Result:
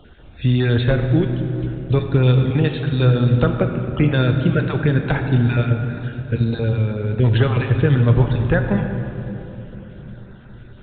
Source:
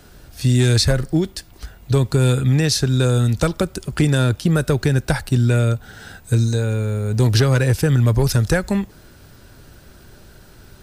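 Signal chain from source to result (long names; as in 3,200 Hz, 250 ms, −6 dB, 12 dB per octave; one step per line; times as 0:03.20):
time-frequency cells dropped at random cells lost 25%
0:03.46–0:03.89: elliptic band-pass filter 150–2,500 Hz
on a send at −4.5 dB: convolution reverb RT60 3.4 s, pre-delay 4 ms
on the sum: A-law companding 64 kbit/s 8,000 Hz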